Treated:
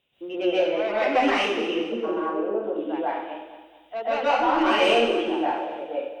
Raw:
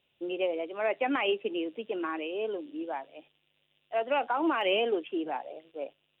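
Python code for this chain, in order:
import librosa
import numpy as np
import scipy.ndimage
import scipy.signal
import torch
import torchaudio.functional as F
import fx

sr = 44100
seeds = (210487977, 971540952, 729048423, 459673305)

y = fx.lowpass(x, sr, hz=1200.0, slope=24, at=(1.74, 2.64))
y = 10.0 ** (-23.5 / 20.0) * np.tanh(y / 10.0 ** (-23.5 / 20.0))
y = fx.echo_feedback(y, sr, ms=221, feedback_pct=40, wet_db=-12.5)
y = fx.rev_plate(y, sr, seeds[0], rt60_s=0.76, hf_ratio=1.0, predelay_ms=115, drr_db=-9.5)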